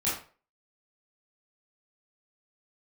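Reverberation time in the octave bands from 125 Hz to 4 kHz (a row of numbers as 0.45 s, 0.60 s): 0.40 s, 0.35 s, 0.40 s, 0.40 s, 0.35 s, 0.30 s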